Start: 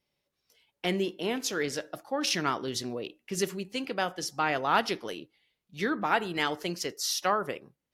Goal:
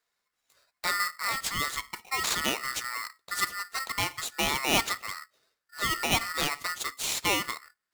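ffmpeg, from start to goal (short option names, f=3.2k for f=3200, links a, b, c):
-af "aeval=exprs='val(0)*sgn(sin(2*PI*1600*n/s))':c=same"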